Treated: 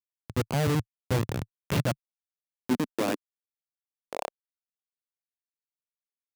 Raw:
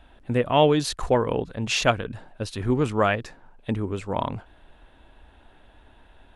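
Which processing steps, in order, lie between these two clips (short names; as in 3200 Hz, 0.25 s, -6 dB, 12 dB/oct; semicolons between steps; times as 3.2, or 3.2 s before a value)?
Schmitt trigger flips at -18 dBFS; high-pass sweep 110 Hz -> 680 Hz, 1.55–4.61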